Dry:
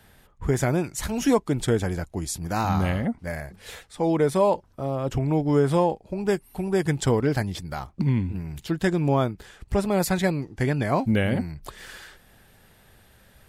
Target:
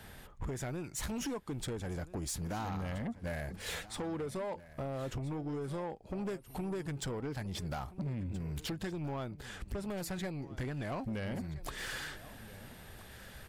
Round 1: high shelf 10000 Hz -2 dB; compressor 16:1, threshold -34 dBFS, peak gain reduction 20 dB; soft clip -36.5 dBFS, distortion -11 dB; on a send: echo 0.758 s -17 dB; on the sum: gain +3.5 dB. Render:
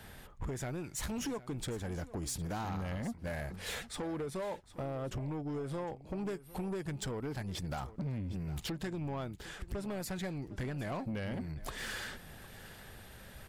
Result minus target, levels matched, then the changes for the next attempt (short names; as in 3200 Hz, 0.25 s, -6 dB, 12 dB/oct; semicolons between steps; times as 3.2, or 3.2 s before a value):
echo 0.568 s early
change: echo 1.326 s -17 dB